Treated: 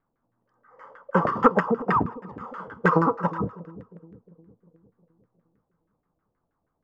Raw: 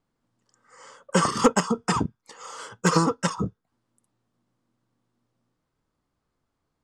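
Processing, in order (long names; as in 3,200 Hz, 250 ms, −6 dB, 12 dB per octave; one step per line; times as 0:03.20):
echo with a time of its own for lows and highs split 470 Hz, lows 356 ms, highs 111 ms, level −15 dB
auto-filter low-pass saw down 6.3 Hz 530–1,800 Hz
level −1.5 dB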